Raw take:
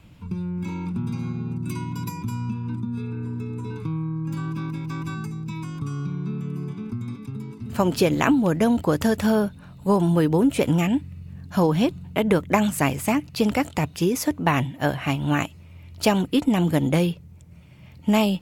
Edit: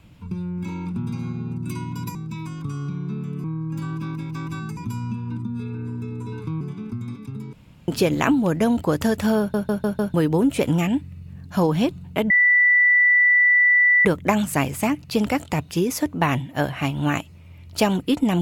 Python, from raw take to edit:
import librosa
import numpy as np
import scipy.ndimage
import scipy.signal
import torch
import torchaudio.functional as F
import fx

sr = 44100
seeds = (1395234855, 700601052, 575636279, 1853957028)

y = fx.edit(x, sr, fx.swap(start_s=2.15, length_s=1.84, other_s=5.32, other_length_s=1.29),
    fx.room_tone_fill(start_s=7.53, length_s=0.35),
    fx.stutter_over(start_s=9.39, slice_s=0.15, count=5),
    fx.insert_tone(at_s=12.3, length_s=1.75, hz=1970.0, db=-12.5), tone=tone)